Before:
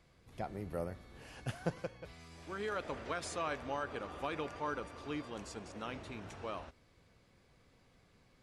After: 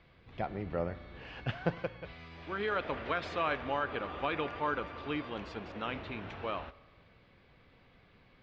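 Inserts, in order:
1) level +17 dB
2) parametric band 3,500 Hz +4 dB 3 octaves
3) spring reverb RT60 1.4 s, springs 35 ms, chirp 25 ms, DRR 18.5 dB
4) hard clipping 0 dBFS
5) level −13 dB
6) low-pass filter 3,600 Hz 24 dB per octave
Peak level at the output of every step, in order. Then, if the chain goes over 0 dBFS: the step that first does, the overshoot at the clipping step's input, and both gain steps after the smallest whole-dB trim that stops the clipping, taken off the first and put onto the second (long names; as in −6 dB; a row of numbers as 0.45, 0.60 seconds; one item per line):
−4.0, −3.0, −3.0, −3.0, −16.0, −16.0 dBFS
no step passes full scale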